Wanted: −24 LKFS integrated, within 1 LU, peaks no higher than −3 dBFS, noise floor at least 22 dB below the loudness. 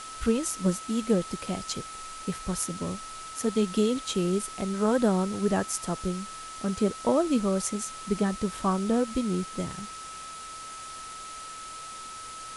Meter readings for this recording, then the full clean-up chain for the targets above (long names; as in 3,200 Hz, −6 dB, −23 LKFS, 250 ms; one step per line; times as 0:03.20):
interfering tone 1,300 Hz; level of the tone −40 dBFS; background noise floor −41 dBFS; target noise floor −52 dBFS; integrated loudness −29.5 LKFS; sample peak −12.0 dBFS; target loudness −24.0 LKFS
→ notch filter 1,300 Hz, Q 30
noise reduction from a noise print 11 dB
level +5.5 dB